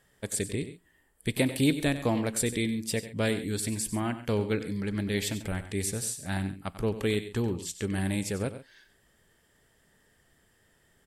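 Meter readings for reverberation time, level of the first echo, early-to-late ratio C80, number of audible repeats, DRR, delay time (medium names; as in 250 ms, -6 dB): no reverb, -12.5 dB, no reverb, 2, no reverb, 94 ms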